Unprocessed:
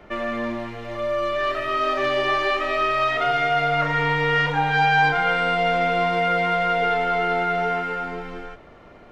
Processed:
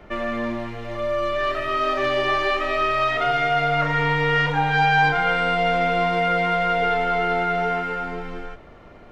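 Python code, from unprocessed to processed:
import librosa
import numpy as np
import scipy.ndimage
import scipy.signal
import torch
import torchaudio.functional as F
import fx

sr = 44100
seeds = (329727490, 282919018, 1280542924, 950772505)

y = fx.low_shelf(x, sr, hz=120.0, db=5.5)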